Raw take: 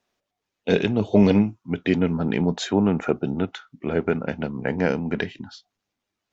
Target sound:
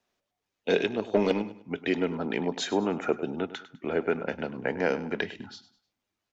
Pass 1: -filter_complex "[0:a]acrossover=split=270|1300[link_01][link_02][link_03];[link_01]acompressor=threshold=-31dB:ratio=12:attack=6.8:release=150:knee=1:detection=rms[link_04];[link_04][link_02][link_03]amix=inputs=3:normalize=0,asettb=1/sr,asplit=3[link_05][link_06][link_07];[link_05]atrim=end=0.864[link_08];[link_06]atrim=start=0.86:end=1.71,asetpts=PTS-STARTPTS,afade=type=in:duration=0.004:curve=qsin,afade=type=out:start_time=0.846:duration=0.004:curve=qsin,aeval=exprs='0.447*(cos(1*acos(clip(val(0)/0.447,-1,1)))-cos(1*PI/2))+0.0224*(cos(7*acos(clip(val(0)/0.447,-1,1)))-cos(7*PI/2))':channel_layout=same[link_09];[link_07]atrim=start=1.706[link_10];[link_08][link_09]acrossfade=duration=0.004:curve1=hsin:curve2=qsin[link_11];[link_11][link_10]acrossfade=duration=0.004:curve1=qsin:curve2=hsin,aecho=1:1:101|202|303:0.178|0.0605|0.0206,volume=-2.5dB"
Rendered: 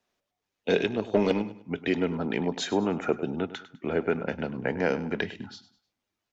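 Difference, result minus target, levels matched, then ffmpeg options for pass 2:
downward compressor: peak gain reduction −6.5 dB
-filter_complex "[0:a]acrossover=split=270|1300[link_01][link_02][link_03];[link_01]acompressor=threshold=-38dB:ratio=12:attack=6.8:release=150:knee=1:detection=rms[link_04];[link_04][link_02][link_03]amix=inputs=3:normalize=0,asettb=1/sr,asplit=3[link_05][link_06][link_07];[link_05]atrim=end=0.864[link_08];[link_06]atrim=start=0.86:end=1.71,asetpts=PTS-STARTPTS,afade=type=in:duration=0.004:curve=qsin,afade=type=out:start_time=0.846:duration=0.004:curve=qsin,aeval=exprs='0.447*(cos(1*acos(clip(val(0)/0.447,-1,1)))-cos(1*PI/2))+0.0224*(cos(7*acos(clip(val(0)/0.447,-1,1)))-cos(7*PI/2))':channel_layout=same[link_09];[link_07]atrim=start=1.706[link_10];[link_08][link_09]acrossfade=duration=0.004:curve1=hsin:curve2=qsin[link_11];[link_11][link_10]acrossfade=duration=0.004:curve1=qsin:curve2=hsin,aecho=1:1:101|202|303:0.178|0.0605|0.0206,volume=-2.5dB"

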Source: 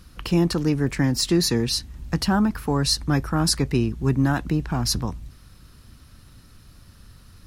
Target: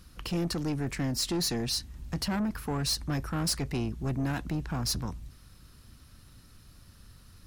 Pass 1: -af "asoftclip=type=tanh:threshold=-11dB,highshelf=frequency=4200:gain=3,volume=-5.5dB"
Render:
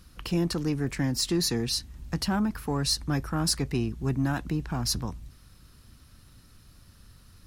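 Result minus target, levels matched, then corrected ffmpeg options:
soft clipping: distortion −12 dB
-af "asoftclip=type=tanh:threshold=-20dB,highshelf=frequency=4200:gain=3,volume=-5.5dB"

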